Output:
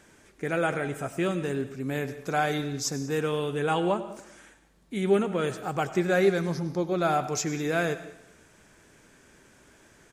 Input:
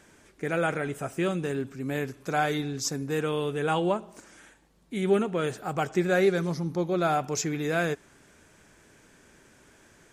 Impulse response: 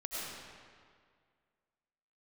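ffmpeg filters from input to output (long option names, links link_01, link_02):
-filter_complex "[0:a]aecho=1:1:98|196|294|392|490:0.119|0.0654|0.036|0.0198|0.0109,asplit=2[link_01][link_02];[1:a]atrim=start_sample=2205,afade=type=out:start_time=0.25:duration=0.01,atrim=end_sample=11466,adelay=15[link_03];[link_02][link_03]afir=irnorm=-1:irlink=0,volume=-14dB[link_04];[link_01][link_04]amix=inputs=2:normalize=0"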